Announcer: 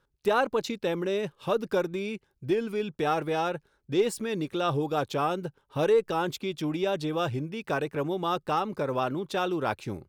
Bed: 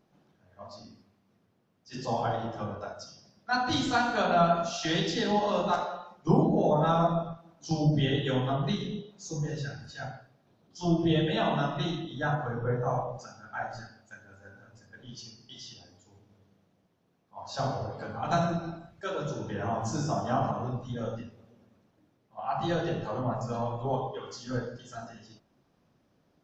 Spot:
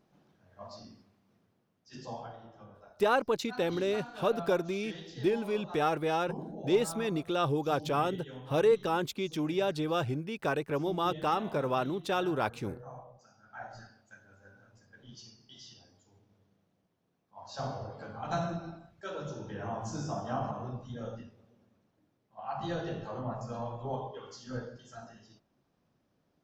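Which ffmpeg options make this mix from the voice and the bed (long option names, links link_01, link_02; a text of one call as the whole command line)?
ffmpeg -i stem1.wav -i stem2.wav -filter_complex "[0:a]adelay=2750,volume=-2dB[link_01];[1:a]volume=10.5dB,afade=type=out:start_time=1.36:duration=0.96:silence=0.149624,afade=type=in:start_time=13.2:duration=0.7:silence=0.266073[link_02];[link_01][link_02]amix=inputs=2:normalize=0" out.wav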